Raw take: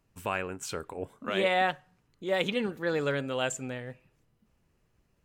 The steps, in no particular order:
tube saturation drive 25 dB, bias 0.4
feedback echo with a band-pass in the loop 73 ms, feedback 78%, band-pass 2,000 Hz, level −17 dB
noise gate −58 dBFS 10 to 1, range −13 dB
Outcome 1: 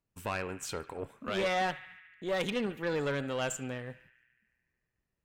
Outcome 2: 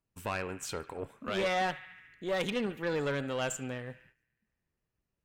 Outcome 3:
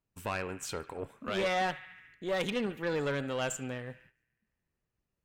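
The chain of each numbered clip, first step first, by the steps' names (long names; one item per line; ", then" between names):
noise gate, then feedback echo with a band-pass in the loop, then tube saturation
feedback echo with a band-pass in the loop, then noise gate, then tube saturation
feedback echo with a band-pass in the loop, then tube saturation, then noise gate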